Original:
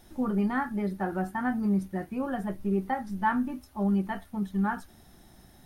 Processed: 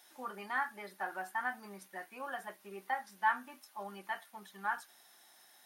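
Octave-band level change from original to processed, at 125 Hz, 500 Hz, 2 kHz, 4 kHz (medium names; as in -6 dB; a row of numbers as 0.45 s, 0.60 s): under -25 dB, -13.0 dB, -0.5 dB, no reading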